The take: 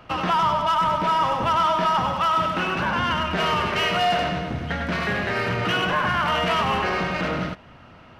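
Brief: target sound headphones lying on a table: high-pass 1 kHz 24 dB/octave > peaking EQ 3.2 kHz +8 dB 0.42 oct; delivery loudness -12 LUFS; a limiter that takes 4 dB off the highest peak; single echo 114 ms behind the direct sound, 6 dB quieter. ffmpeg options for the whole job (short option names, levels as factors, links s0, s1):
-af "alimiter=limit=0.158:level=0:latency=1,highpass=f=1000:w=0.5412,highpass=f=1000:w=1.3066,equalizer=f=3200:t=o:w=0.42:g=8,aecho=1:1:114:0.501,volume=3.55"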